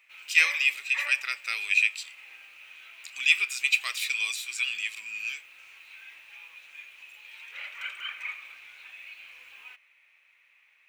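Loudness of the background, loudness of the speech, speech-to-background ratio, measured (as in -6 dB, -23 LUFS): -40.0 LUFS, -25.5 LUFS, 14.5 dB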